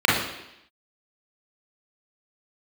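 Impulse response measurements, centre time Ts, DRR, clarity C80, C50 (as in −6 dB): 60 ms, −6.0 dB, 5.5 dB, 1.0 dB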